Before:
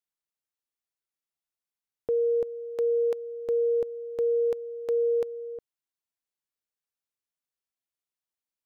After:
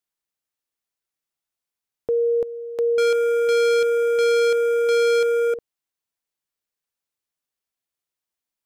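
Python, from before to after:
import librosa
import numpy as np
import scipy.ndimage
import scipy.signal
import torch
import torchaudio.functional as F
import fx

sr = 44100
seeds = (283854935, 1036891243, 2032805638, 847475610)

y = fx.leveller(x, sr, passes=5, at=(2.98, 5.54))
y = y * librosa.db_to_amplitude(4.5)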